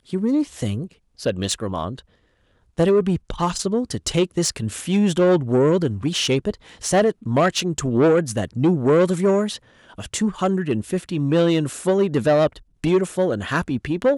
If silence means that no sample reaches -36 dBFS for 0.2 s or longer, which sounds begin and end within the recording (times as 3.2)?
1.19–2
2.78–9.57
9.9–12.58